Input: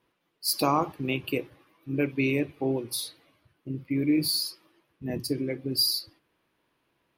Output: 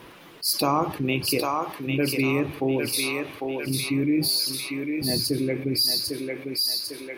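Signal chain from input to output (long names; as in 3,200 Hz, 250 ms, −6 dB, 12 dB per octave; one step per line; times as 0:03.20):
feedback echo with a high-pass in the loop 800 ms, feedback 46%, high-pass 650 Hz, level −4.5 dB
envelope flattener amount 50%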